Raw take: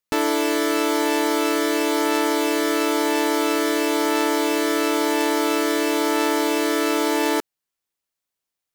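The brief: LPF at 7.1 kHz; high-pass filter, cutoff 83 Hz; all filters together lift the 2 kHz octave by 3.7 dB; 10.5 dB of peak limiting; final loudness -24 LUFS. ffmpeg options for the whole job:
-af "highpass=83,lowpass=7100,equalizer=f=2000:t=o:g=4.5,volume=1.19,alimiter=limit=0.178:level=0:latency=1"

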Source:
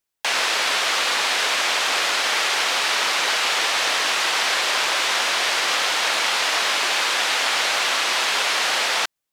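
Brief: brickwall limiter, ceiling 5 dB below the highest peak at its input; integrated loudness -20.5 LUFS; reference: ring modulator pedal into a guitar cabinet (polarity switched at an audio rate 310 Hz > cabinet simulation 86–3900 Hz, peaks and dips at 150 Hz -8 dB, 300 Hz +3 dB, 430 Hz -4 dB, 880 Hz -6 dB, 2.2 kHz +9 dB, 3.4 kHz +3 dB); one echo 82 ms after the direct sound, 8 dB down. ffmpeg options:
-af "alimiter=limit=0.224:level=0:latency=1,aecho=1:1:82:0.398,aeval=exprs='val(0)*sgn(sin(2*PI*310*n/s))':c=same,highpass=86,equalizer=f=150:t=q:w=4:g=-8,equalizer=f=300:t=q:w=4:g=3,equalizer=f=430:t=q:w=4:g=-4,equalizer=f=880:t=q:w=4:g=-6,equalizer=f=2200:t=q:w=4:g=9,equalizer=f=3400:t=q:w=4:g=3,lowpass=f=3900:w=0.5412,lowpass=f=3900:w=1.3066,volume=0.75"

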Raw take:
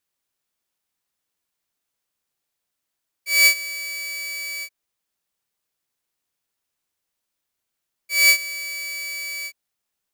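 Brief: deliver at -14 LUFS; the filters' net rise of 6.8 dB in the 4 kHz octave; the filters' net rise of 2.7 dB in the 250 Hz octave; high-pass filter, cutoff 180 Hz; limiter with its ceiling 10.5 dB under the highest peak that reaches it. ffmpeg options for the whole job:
-af "highpass=180,equalizer=f=250:t=o:g=5,equalizer=f=4000:t=o:g=8,volume=2.66,alimiter=limit=0.562:level=0:latency=1"

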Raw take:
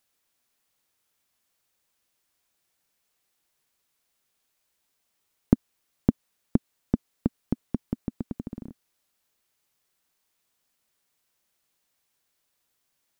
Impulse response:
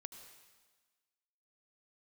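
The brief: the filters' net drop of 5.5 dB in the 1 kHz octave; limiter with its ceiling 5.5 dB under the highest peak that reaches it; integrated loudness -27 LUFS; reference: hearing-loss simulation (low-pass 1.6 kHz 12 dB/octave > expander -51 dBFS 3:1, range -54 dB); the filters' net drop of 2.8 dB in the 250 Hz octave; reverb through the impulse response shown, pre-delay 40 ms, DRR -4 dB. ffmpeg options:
-filter_complex "[0:a]equalizer=f=250:t=o:g=-3,equalizer=f=1000:t=o:g=-7,alimiter=limit=0.355:level=0:latency=1,asplit=2[s0][s1];[1:a]atrim=start_sample=2205,adelay=40[s2];[s1][s2]afir=irnorm=-1:irlink=0,volume=2.82[s3];[s0][s3]amix=inputs=2:normalize=0,lowpass=1600,agate=range=0.002:threshold=0.00282:ratio=3,volume=1.5"

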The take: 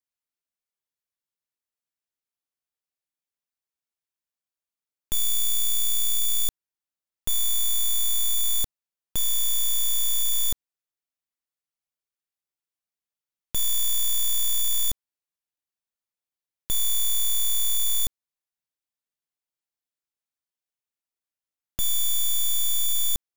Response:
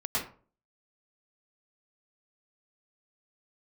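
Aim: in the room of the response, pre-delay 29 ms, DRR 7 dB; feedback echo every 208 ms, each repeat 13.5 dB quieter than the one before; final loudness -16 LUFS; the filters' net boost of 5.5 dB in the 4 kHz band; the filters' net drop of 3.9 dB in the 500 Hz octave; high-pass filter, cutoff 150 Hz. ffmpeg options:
-filter_complex "[0:a]highpass=150,equalizer=f=500:t=o:g=-5,equalizer=f=4000:t=o:g=6.5,aecho=1:1:208|416:0.211|0.0444,asplit=2[s0][s1];[1:a]atrim=start_sample=2205,adelay=29[s2];[s1][s2]afir=irnorm=-1:irlink=0,volume=0.188[s3];[s0][s3]amix=inputs=2:normalize=0,volume=1.78"

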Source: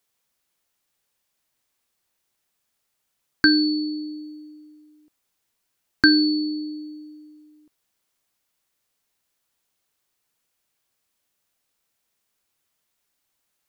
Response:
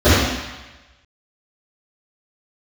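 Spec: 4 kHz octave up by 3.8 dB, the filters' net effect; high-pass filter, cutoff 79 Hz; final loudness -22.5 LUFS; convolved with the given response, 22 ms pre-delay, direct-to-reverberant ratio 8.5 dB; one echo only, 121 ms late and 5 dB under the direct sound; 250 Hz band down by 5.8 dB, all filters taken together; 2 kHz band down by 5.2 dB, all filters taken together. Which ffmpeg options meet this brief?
-filter_complex "[0:a]highpass=79,equalizer=f=250:t=o:g=-7.5,equalizer=f=2000:t=o:g=-8.5,equalizer=f=4000:t=o:g=5.5,aecho=1:1:121:0.562,asplit=2[s0][s1];[1:a]atrim=start_sample=2205,adelay=22[s2];[s1][s2]afir=irnorm=-1:irlink=0,volume=0.0133[s3];[s0][s3]amix=inputs=2:normalize=0,volume=0.794"

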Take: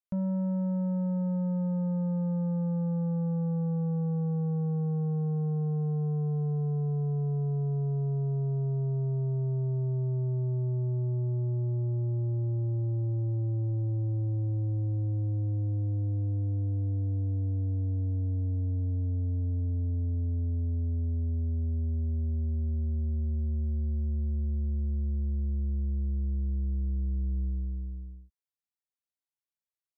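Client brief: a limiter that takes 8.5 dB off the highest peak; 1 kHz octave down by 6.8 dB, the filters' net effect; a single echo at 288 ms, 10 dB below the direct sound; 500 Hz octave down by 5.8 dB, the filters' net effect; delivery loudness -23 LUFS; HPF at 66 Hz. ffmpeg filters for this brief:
-af "highpass=66,equalizer=f=500:t=o:g=-6,equalizer=f=1000:t=o:g=-6.5,alimiter=level_in=3.16:limit=0.0631:level=0:latency=1,volume=0.316,aecho=1:1:288:0.316,volume=6.31"

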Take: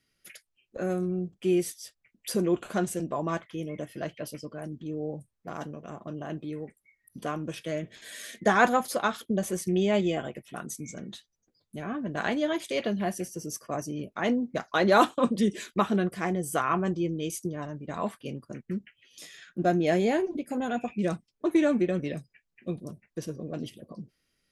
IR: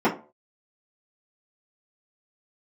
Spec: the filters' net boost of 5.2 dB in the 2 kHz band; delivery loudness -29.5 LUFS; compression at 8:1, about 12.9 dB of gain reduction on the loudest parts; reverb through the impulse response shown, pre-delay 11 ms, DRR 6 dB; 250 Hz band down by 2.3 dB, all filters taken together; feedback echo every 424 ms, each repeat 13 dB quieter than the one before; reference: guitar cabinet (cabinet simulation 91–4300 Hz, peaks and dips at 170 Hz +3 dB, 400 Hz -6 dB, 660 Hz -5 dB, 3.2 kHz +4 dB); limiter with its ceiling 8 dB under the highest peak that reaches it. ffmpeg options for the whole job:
-filter_complex "[0:a]equalizer=f=250:t=o:g=-3,equalizer=f=2000:t=o:g=7,acompressor=threshold=0.0447:ratio=8,alimiter=limit=0.0794:level=0:latency=1,aecho=1:1:424|848|1272:0.224|0.0493|0.0108,asplit=2[s0][s1];[1:a]atrim=start_sample=2205,adelay=11[s2];[s1][s2]afir=irnorm=-1:irlink=0,volume=0.0668[s3];[s0][s3]amix=inputs=2:normalize=0,highpass=91,equalizer=f=170:t=q:w=4:g=3,equalizer=f=400:t=q:w=4:g=-6,equalizer=f=660:t=q:w=4:g=-5,equalizer=f=3200:t=q:w=4:g=4,lowpass=f=4300:w=0.5412,lowpass=f=4300:w=1.3066,volume=1.68"

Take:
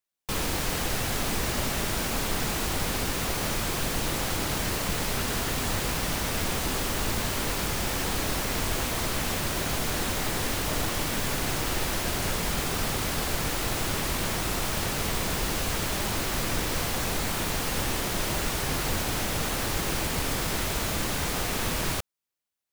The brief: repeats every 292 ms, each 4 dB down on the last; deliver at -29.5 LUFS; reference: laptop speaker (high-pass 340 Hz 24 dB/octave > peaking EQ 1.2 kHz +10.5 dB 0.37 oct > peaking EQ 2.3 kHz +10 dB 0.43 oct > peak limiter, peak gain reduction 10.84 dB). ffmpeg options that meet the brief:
-af "highpass=f=340:w=0.5412,highpass=f=340:w=1.3066,equalizer=f=1200:t=o:w=0.37:g=10.5,equalizer=f=2300:t=o:w=0.43:g=10,aecho=1:1:292|584|876|1168|1460|1752|2044|2336|2628:0.631|0.398|0.25|0.158|0.0994|0.0626|0.0394|0.0249|0.0157,volume=1.12,alimiter=limit=0.0794:level=0:latency=1"

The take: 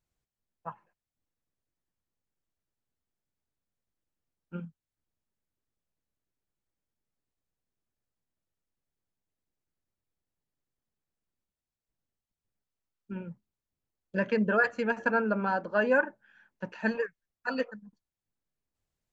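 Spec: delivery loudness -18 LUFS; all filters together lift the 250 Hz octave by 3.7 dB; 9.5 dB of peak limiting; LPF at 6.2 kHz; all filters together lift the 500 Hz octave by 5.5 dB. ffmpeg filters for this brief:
-af "lowpass=6200,equalizer=f=250:t=o:g=3.5,equalizer=f=500:t=o:g=5.5,volume=4.47,alimiter=limit=0.473:level=0:latency=1"

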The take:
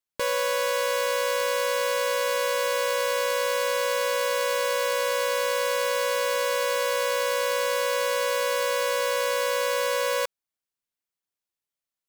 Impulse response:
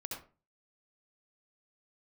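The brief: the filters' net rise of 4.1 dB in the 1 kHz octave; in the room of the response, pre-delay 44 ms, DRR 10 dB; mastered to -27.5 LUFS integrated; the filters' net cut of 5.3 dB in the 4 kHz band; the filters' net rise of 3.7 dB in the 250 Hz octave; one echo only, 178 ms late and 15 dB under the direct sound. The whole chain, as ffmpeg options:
-filter_complex "[0:a]equalizer=f=250:t=o:g=4.5,equalizer=f=1000:t=o:g=4.5,equalizer=f=4000:t=o:g=-7.5,aecho=1:1:178:0.178,asplit=2[s0][s1];[1:a]atrim=start_sample=2205,adelay=44[s2];[s1][s2]afir=irnorm=-1:irlink=0,volume=0.335[s3];[s0][s3]amix=inputs=2:normalize=0,volume=0.668"

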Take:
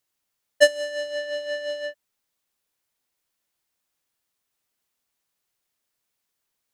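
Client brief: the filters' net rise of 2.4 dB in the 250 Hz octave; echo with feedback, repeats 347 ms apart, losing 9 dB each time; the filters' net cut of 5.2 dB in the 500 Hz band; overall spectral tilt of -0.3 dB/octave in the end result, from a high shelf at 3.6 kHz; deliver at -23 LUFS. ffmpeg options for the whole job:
-af "equalizer=f=250:t=o:g=5.5,equalizer=f=500:t=o:g=-7,highshelf=f=3600:g=-6.5,aecho=1:1:347|694|1041|1388:0.355|0.124|0.0435|0.0152,volume=1.88"

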